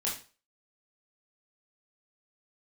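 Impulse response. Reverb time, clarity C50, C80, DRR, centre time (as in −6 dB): 0.35 s, 6.5 dB, 12.0 dB, −5.5 dB, 31 ms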